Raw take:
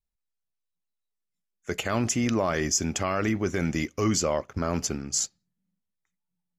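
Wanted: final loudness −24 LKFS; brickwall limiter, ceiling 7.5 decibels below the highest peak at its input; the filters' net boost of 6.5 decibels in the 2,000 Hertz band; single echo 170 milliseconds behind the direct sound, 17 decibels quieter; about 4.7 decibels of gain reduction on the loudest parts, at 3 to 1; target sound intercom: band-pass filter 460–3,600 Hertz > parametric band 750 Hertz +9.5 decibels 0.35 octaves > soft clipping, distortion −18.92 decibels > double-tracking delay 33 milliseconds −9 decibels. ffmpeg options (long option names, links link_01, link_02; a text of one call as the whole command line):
ffmpeg -i in.wav -filter_complex "[0:a]equalizer=frequency=2000:width_type=o:gain=8,acompressor=threshold=-26dB:ratio=3,alimiter=limit=-20.5dB:level=0:latency=1,highpass=460,lowpass=3600,equalizer=frequency=750:width_type=o:width=0.35:gain=9.5,aecho=1:1:170:0.141,asoftclip=threshold=-23dB,asplit=2[link_01][link_02];[link_02]adelay=33,volume=-9dB[link_03];[link_01][link_03]amix=inputs=2:normalize=0,volume=11.5dB" out.wav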